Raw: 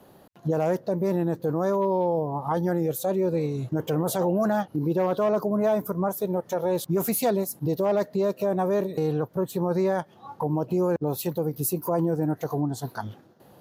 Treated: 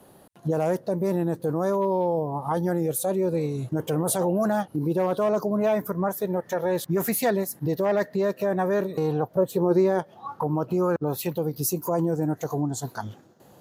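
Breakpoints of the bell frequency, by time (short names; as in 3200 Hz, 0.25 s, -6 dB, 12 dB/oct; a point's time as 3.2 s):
bell +11 dB 0.44 oct
5.27 s 9500 Hz
5.8 s 1800 Hz
8.68 s 1800 Hz
9.89 s 280 Hz
10.32 s 1300 Hz
11.02 s 1300 Hz
11.76 s 7100 Hz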